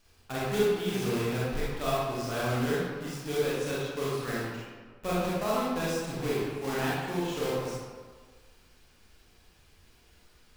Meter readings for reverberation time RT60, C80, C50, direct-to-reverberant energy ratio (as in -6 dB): 1.6 s, 0.0 dB, -3.5 dB, -8.0 dB